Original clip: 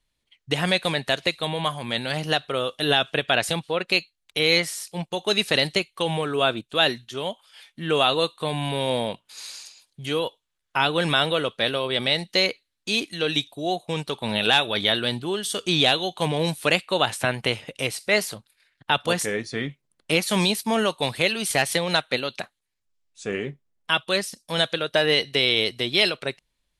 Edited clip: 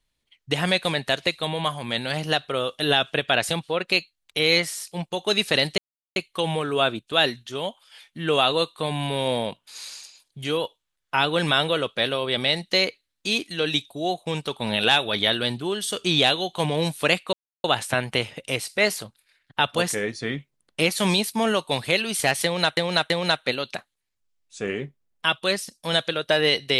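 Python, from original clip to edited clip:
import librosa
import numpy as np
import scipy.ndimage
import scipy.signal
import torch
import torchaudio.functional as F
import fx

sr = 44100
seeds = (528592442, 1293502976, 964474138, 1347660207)

y = fx.edit(x, sr, fx.insert_silence(at_s=5.78, length_s=0.38),
    fx.insert_silence(at_s=16.95, length_s=0.31),
    fx.repeat(start_s=21.75, length_s=0.33, count=3), tone=tone)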